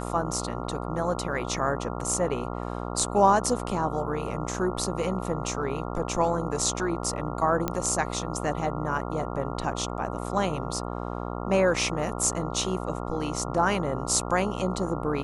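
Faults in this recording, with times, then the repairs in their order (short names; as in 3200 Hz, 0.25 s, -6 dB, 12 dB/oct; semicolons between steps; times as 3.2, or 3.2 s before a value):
buzz 60 Hz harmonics 23 -33 dBFS
7.68 pop -12 dBFS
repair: de-click; de-hum 60 Hz, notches 23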